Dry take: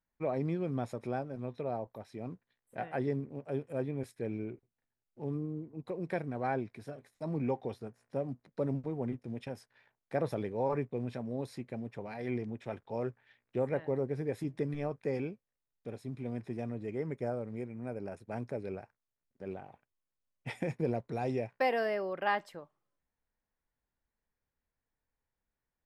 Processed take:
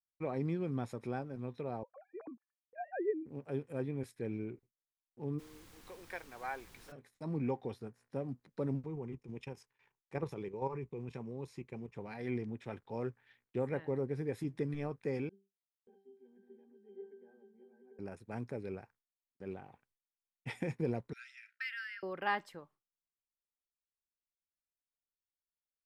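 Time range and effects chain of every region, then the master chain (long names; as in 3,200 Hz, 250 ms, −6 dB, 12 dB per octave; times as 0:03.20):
0:01.83–0:03.26: three sine waves on the formant tracks + low-pass filter 1,900 Hz 24 dB per octave
0:05.38–0:06.91: high-pass filter 770 Hz + background noise pink −57 dBFS
0:08.85–0:11.96: output level in coarse steps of 10 dB + EQ curve with evenly spaced ripples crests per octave 0.74, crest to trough 7 dB
0:15.29–0:17.99: delay that plays each chunk backwards 557 ms, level −5.5 dB + Butterworth high-pass 240 Hz + resonances in every octave G, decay 0.35 s
0:21.13–0:22.03: linear-phase brick-wall high-pass 1,300 Hz + high-shelf EQ 5,700 Hz −11 dB
whole clip: noise gate with hold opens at −59 dBFS; parametric band 630 Hz −7.5 dB 0.42 octaves; level −1.5 dB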